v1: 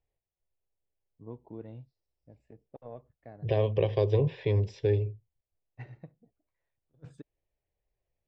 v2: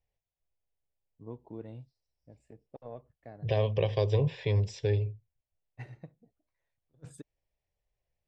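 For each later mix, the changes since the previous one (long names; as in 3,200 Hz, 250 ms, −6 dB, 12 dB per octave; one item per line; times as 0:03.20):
second voice: add parametric band 350 Hz −6.5 dB 0.75 octaves
master: remove high-frequency loss of the air 150 metres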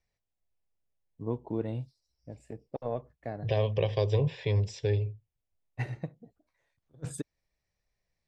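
first voice +10.5 dB
master: add high-shelf EQ 8,900 Hz +5 dB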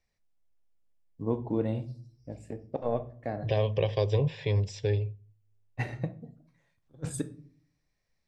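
reverb: on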